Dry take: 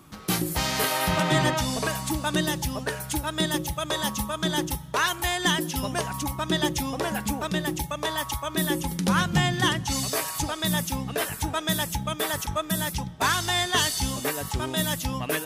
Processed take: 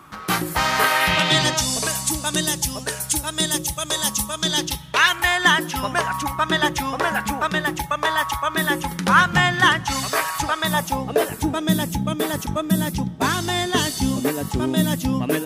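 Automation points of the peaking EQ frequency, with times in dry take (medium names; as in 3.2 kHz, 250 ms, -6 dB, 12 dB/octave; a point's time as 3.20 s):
peaking EQ +12.5 dB 1.9 oct
0.83 s 1.3 kHz
1.68 s 8 kHz
4.25 s 8 kHz
5.36 s 1.4 kHz
10.58 s 1.4 kHz
11.53 s 250 Hz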